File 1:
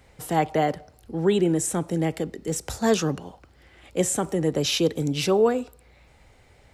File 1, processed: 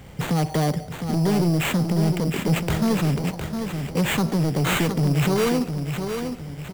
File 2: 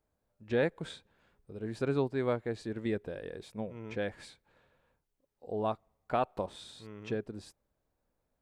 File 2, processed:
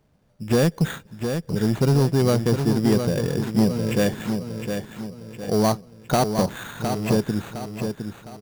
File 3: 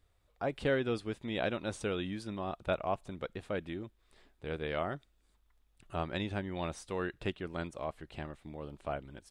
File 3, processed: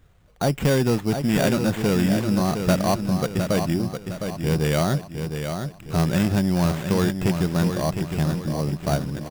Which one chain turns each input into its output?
parametric band 160 Hz +12.5 dB 1.2 octaves
in parallel at −0.5 dB: brickwall limiter −16 dBFS
on the sum: downward compressor 3 to 1, threshold −18 dBFS
sample-rate reduction 5,200 Hz, jitter 0%
soft clipping −20 dBFS
on a send: repeating echo 710 ms, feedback 41%, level −7 dB
on the sum: loudness normalisation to −23 LKFS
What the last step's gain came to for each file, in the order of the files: +3.0, +7.5, +6.5 decibels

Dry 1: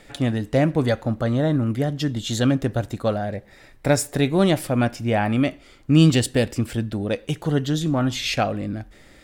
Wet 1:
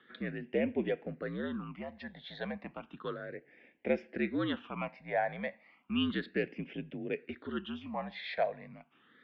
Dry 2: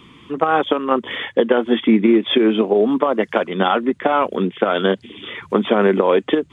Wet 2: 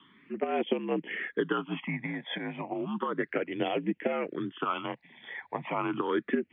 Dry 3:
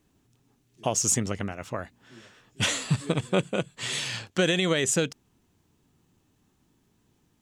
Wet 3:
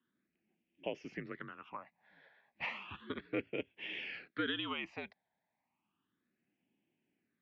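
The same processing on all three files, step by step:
all-pass phaser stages 8, 0.33 Hz, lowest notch 380–1,300 Hz
single-sideband voice off tune −65 Hz 310–3,300 Hz
level −7 dB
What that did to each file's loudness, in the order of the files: −15.0, −15.0, −15.0 LU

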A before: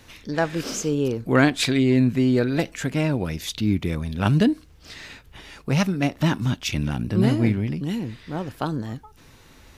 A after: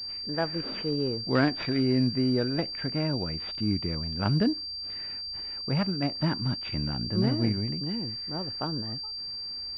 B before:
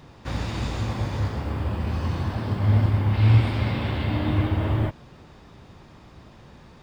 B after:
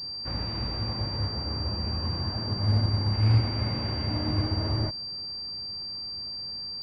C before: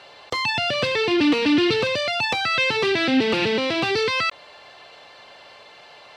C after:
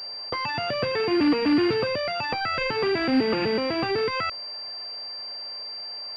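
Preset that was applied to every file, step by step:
switching amplifier with a slow clock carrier 4,700 Hz
normalise the peak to −12 dBFS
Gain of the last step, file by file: −6.5, −5.0, −2.0 decibels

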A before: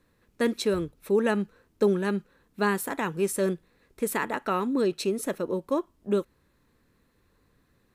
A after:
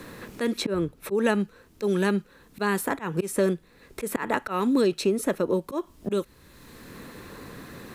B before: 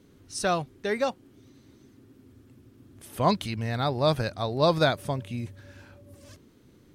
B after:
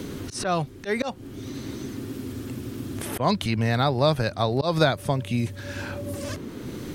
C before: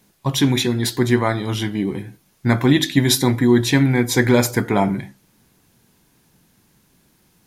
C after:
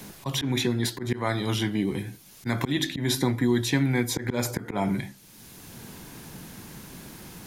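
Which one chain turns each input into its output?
volume swells 204 ms
multiband upward and downward compressor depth 70%
loudness normalisation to −27 LKFS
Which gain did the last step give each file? +5.5, +6.5, −5.0 decibels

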